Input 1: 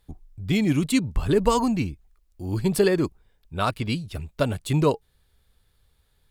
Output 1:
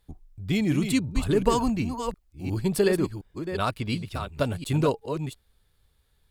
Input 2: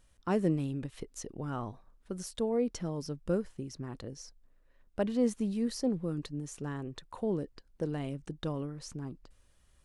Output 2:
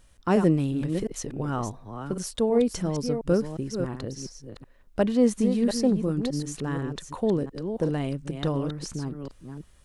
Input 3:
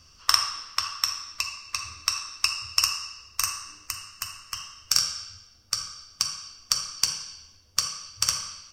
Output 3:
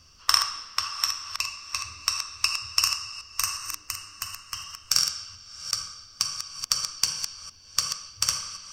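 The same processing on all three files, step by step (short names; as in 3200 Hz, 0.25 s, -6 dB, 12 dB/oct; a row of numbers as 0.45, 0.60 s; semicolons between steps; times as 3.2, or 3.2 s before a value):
reverse delay 0.357 s, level -7.5 dB; match loudness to -27 LUFS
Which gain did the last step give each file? -2.5, +8.0, -0.5 dB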